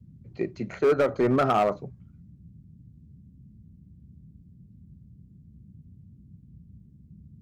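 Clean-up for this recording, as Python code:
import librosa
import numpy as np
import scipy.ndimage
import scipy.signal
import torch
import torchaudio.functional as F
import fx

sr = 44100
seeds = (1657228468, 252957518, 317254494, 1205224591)

y = fx.fix_declip(x, sr, threshold_db=-16.5)
y = fx.noise_reduce(y, sr, print_start_s=6.61, print_end_s=7.11, reduce_db=18.0)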